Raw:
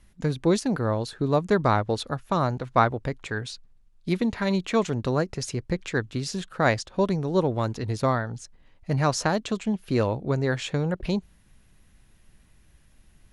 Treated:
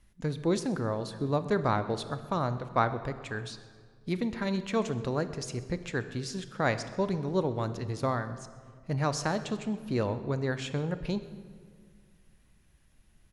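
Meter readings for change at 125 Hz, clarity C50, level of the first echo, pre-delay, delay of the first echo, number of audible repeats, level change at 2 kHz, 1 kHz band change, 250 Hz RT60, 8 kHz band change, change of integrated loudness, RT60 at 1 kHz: -5.5 dB, 12.0 dB, -22.0 dB, 24 ms, 130 ms, 1, -5.5 dB, -5.5 dB, 2.3 s, -6.0 dB, -5.5 dB, 1.7 s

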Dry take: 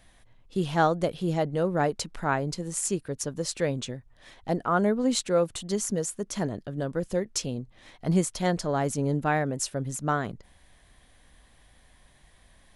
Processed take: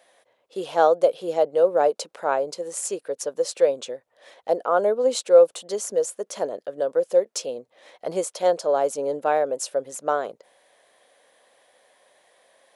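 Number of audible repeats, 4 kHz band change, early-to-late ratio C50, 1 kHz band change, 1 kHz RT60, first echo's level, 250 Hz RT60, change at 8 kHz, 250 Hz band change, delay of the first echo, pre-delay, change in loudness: no echo, 0.0 dB, no reverb, +4.0 dB, no reverb, no echo, no reverb, 0.0 dB, -8.0 dB, no echo, no reverb, +5.0 dB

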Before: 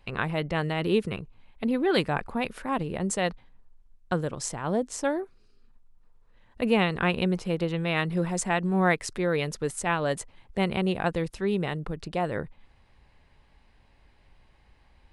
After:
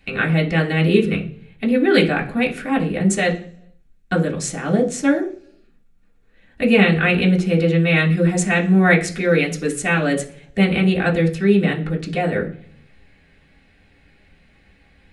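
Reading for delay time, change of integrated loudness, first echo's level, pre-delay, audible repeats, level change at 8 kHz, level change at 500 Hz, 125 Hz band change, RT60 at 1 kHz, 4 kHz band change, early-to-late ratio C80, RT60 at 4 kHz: no echo, +10.0 dB, no echo, 3 ms, no echo, +7.0 dB, +8.5 dB, +11.5 dB, 0.40 s, +7.5 dB, 17.5 dB, 0.55 s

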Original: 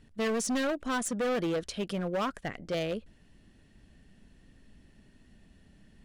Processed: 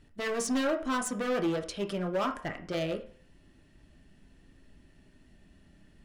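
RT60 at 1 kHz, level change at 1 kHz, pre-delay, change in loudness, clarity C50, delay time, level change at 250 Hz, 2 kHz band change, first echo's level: 0.55 s, +1.0 dB, 3 ms, 0.0 dB, 12.5 dB, no echo, +0.5 dB, 0.0 dB, no echo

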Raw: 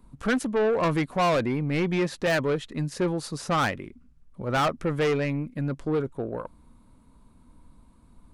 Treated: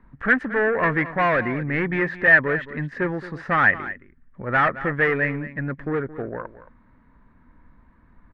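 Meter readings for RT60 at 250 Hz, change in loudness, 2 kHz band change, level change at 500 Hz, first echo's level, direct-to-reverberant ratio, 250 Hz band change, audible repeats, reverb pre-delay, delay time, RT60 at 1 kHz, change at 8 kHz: no reverb, +5.0 dB, +13.0 dB, +1.0 dB, -15.0 dB, no reverb, +0.5 dB, 1, no reverb, 221 ms, no reverb, under -20 dB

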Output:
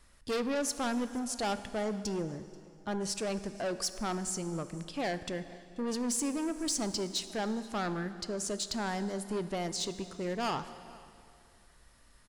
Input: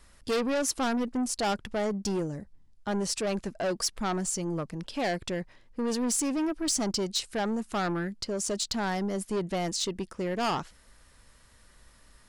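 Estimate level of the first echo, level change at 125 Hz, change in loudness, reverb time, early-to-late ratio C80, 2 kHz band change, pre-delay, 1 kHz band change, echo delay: -23.5 dB, -4.5 dB, -4.5 dB, 2.4 s, 13.0 dB, -4.0 dB, 7 ms, -4.0 dB, 484 ms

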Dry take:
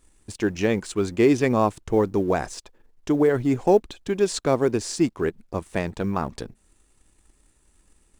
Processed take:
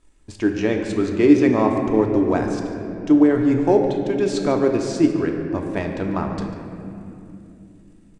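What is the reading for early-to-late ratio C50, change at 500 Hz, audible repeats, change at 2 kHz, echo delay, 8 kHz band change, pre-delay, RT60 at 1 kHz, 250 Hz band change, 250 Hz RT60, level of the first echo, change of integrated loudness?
4.5 dB, +2.0 dB, 1, +1.5 dB, 144 ms, -4.5 dB, 3 ms, 2.4 s, +6.5 dB, 4.4 s, -14.5 dB, +4.0 dB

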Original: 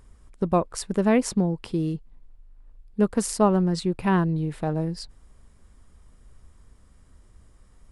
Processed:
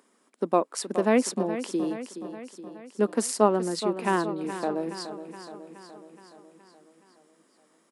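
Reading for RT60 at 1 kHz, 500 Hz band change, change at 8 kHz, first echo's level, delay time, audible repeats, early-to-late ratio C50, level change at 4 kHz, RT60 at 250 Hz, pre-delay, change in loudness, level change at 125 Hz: no reverb, +0.5 dB, +0.5 dB, -11.5 dB, 421 ms, 6, no reverb, +0.5 dB, no reverb, no reverb, -2.5 dB, -12.5 dB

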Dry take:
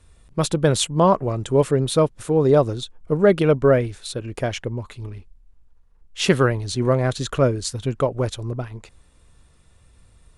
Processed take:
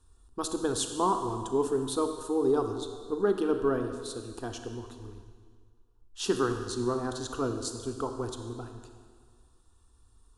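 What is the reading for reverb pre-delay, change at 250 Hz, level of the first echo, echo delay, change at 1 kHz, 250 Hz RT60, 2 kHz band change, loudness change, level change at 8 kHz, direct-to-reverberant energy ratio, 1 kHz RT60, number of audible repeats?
23 ms, -8.5 dB, no echo, no echo, -7.0 dB, 1.8 s, -13.0 dB, -10.0 dB, -7.0 dB, 6.0 dB, 1.8 s, no echo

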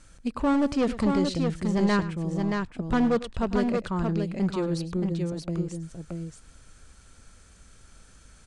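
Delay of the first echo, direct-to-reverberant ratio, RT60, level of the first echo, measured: 102 ms, no reverb, no reverb, -15.0 dB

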